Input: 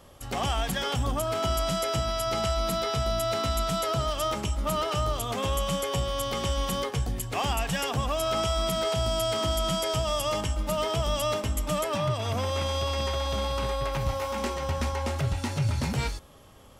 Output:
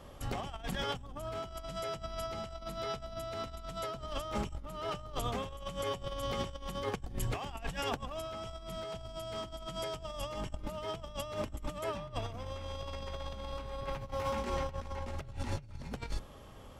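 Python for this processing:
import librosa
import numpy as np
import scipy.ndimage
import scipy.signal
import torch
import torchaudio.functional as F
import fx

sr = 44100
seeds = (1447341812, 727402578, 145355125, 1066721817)

y = fx.octave_divider(x, sr, octaves=2, level_db=-2.0)
y = fx.high_shelf(y, sr, hz=5100.0, db=-8.5)
y = fx.over_compress(y, sr, threshold_db=-32.0, ratio=-0.5)
y = y * 10.0 ** (-5.5 / 20.0)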